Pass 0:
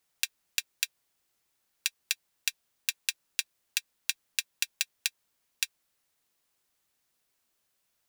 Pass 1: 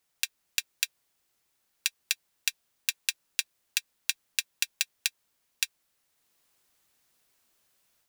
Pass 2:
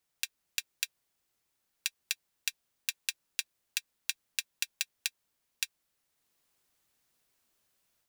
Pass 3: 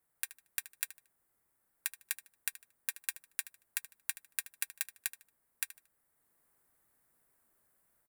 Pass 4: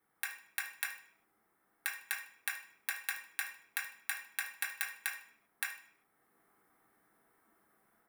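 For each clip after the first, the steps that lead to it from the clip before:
AGC gain up to 6 dB
low shelf 380 Hz +3 dB; gain -5 dB
band shelf 4100 Hz -14 dB; feedback echo 76 ms, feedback 28%, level -16 dB; gain +3 dB
reverb RT60 0.50 s, pre-delay 3 ms, DRR -3 dB; gain -4 dB

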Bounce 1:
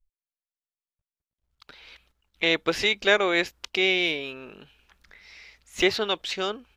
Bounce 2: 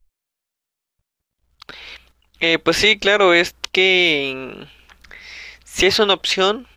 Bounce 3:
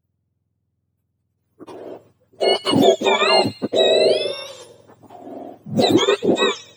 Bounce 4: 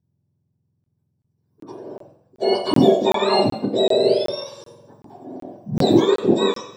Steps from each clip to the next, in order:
maximiser +13 dB; gain -1 dB
spectrum mirrored in octaves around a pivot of 1200 Hz; thin delay 89 ms, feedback 47%, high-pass 2900 Hz, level -15 dB
reverb RT60 0.70 s, pre-delay 23 ms, DRR 2.5 dB; crackling interface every 0.38 s, samples 1024, zero, from 0.84; gain -13 dB

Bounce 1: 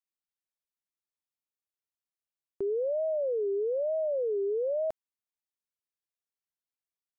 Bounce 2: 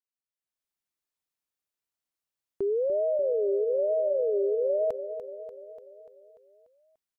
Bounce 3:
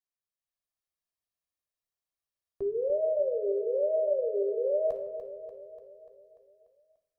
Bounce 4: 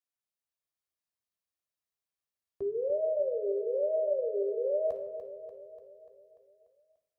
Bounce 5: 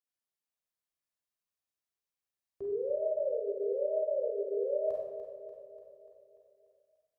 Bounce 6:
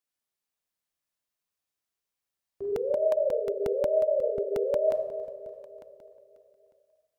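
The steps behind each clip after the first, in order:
feedback echo 0.293 s, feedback 58%, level -11 dB; AGC gain up to 12 dB; gain -9 dB
reverb RT60 0.90 s, pre-delay 3 ms, DRR 3.5 dB; gain -8 dB
HPF 50 Hz; gain -2 dB
Schroeder reverb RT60 0.7 s, combs from 31 ms, DRR -0.5 dB; gain -5 dB
dynamic EQ 640 Hz, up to +4 dB, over -46 dBFS, Q 6.6; crackling interface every 0.18 s, samples 64, repeat, from 0.78; gain +4 dB

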